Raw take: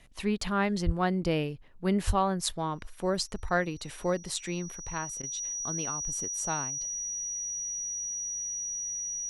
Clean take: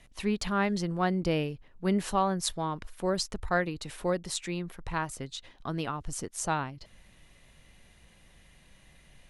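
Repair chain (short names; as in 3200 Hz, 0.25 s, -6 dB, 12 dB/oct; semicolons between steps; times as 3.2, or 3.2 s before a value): notch 5800 Hz, Q 30; 0.85–0.97 HPF 140 Hz 24 dB/oct; 2.06–2.18 HPF 140 Hz 24 dB/oct; interpolate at 0.38/5.22, 11 ms; gain 0 dB, from 4.8 s +4 dB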